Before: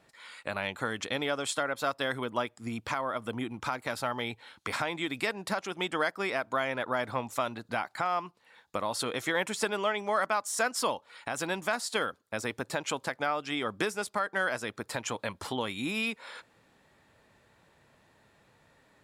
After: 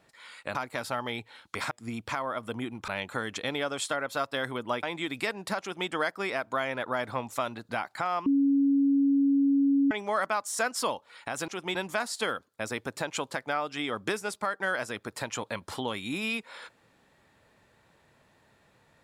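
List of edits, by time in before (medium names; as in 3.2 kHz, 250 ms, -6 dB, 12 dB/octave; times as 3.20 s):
0.55–2.50 s: swap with 3.67–4.83 s
5.61–5.88 s: copy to 11.48 s
8.26–9.91 s: bleep 278 Hz -20 dBFS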